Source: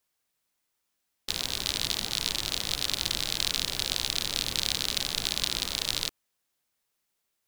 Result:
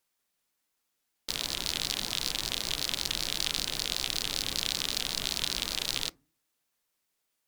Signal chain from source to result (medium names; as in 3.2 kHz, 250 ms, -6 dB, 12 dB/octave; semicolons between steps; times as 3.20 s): peaking EQ 85 Hz -12 dB 0.34 oct; FDN reverb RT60 0.33 s, low-frequency decay 1.55×, high-frequency decay 0.45×, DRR 18 dB; in parallel at -3 dB: peak limiter -14 dBFS, peak gain reduction 8 dB; on the sum: vibrato with a chosen wave saw up 5.2 Hz, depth 250 cents; trim -5 dB